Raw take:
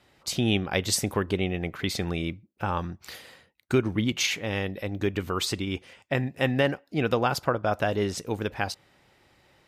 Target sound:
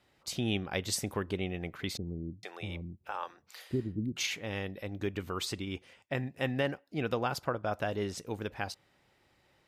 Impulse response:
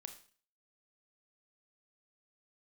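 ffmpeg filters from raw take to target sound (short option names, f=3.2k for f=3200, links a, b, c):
-filter_complex "[0:a]asettb=1/sr,asplit=3[a][b][c];[a]atrim=end=1.974[d];[b]atrim=start=1.97:end=4.17,asetpts=PTS-STARTPTS,afade=t=in:d=0.004:c=qsin,afade=t=out:st=2.196:d=0.004:c=qsin,acrossover=split=440[e][f];[f]adelay=460[g];[e][g]amix=inputs=2:normalize=0,atrim=end_sample=97020[h];[c]atrim=start=4.166[i];[d][h]acrossfade=d=0.004:c1=hsin:c2=qsin[j];[j][i]acrossfade=d=0.004:c1=qsin:c2=hsin,volume=-7.5dB"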